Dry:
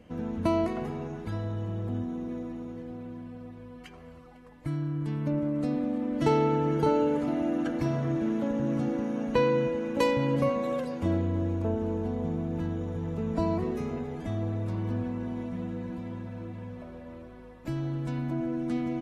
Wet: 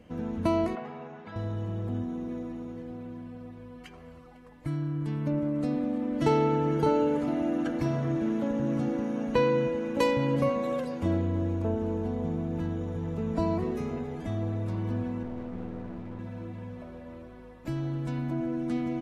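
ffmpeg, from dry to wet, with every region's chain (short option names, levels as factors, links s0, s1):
-filter_complex "[0:a]asettb=1/sr,asplit=3[s0][s1][s2];[s0]atrim=end=0.754[s3];[s1]atrim=start=0.75:end=1.36,asetpts=PTS-STARTPTS,afade=t=in:d=0.004:c=qsin,afade=t=out:st=0.606:d=0.004:c=qsin,highpass=270,lowpass=3100,equalizer=f=350:t=o:w=0.43:g=-13.5[s4];[s2]atrim=start=1.356[s5];[s3][s4]acrossfade=d=0.004:c1=hsin:c2=qsin[s6];[s6][s5]acrossfade=d=0.004:c1=qsin:c2=hsin,asettb=1/sr,asplit=3[s7][s8][s9];[s7]atrim=end=15.234[s10];[s8]atrim=start=15.23:end=16.19,asetpts=PTS-STARTPTS,afade=t=in:d=0.004:c=qsin,afade=t=out:st=0.956:d=0.004:c=qsin,lowpass=f=2100:p=1,aeval=exprs='clip(val(0),-1,0.0075)':c=same[s11];[s9]atrim=start=16.186[s12];[s10][s11]acrossfade=d=0.004:c1=hsin:c2=qsin[s13];[s13][s12]acrossfade=d=0.004:c1=qsin:c2=hsin"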